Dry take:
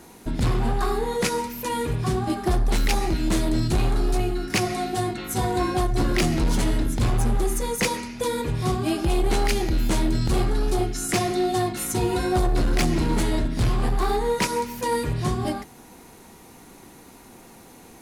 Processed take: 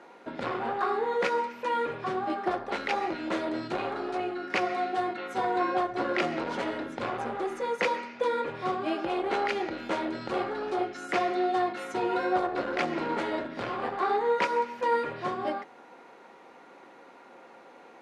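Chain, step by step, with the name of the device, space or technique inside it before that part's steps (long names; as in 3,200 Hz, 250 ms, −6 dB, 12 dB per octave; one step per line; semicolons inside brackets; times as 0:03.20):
tin-can telephone (band-pass filter 460–2,300 Hz; hollow resonant body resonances 540/1,400 Hz, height 9 dB, ringing for 85 ms)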